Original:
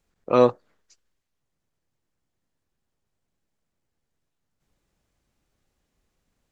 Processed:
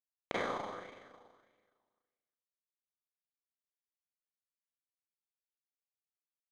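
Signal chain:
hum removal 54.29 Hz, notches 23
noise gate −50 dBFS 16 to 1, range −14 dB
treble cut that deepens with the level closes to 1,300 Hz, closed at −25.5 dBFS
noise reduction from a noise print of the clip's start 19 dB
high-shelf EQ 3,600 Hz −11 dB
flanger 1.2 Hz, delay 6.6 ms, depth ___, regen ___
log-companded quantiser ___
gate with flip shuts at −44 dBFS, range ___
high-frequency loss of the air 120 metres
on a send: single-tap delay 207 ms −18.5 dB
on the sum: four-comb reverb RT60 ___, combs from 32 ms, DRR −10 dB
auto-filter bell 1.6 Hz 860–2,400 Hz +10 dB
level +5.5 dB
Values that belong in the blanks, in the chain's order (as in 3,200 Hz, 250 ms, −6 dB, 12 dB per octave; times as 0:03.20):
5.8 ms, +41%, 2 bits, −37 dB, 1.7 s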